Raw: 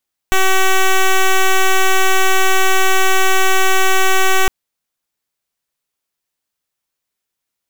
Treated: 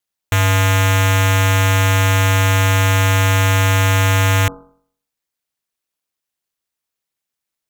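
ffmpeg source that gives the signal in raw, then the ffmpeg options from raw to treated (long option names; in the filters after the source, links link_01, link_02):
-f lavfi -i "aevalsrc='0.299*(2*lt(mod(380*t,1),0.08)-1)':duration=4.16:sample_rate=44100"
-af "bandreject=frequency=47.09:width_type=h:width=4,bandreject=frequency=94.18:width_type=h:width=4,bandreject=frequency=141.27:width_type=h:width=4,bandreject=frequency=188.36:width_type=h:width=4,bandreject=frequency=235.45:width_type=h:width=4,bandreject=frequency=282.54:width_type=h:width=4,bandreject=frequency=329.63:width_type=h:width=4,bandreject=frequency=376.72:width_type=h:width=4,bandreject=frequency=423.81:width_type=h:width=4,bandreject=frequency=470.9:width_type=h:width=4,bandreject=frequency=517.99:width_type=h:width=4,bandreject=frequency=565.08:width_type=h:width=4,bandreject=frequency=612.17:width_type=h:width=4,bandreject=frequency=659.26:width_type=h:width=4,bandreject=frequency=706.35:width_type=h:width=4,bandreject=frequency=753.44:width_type=h:width=4,bandreject=frequency=800.53:width_type=h:width=4,bandreject=frequency=847.62:width_type=h:width=4,bandreject=frequency=894.71:width_type=h:width=4,bandreject=frequency=941.8:width_type=h:width=4,bandreject=frequency=988.89:width_type=h:width=4,bandreject=frequency=1035.98:width_type=h:width=4,bandreject=frequency=1083.07:width_type=h:width=4,bandreject=frequency=1130.16:width_type=h:width=4,bandreject=frequency=1177.25:width_type=h:width=4,bandreject=frequency=1224.34:width_type=h:width=4,bandreject=frequency=1271.43:width_type=h:width=4,bandreject=frequency=1318.52:width_type=h:width=4,bandreject=frequency=1365.61:width_type=h:width=4,bandreject=frequency=1412.7:width_type=h:width=4,bandreject=frequency=1459.79:width_type=h:width=4,aeval=exprs='val(0)*sin(2*PI*100*n/s)':channel_layout=same"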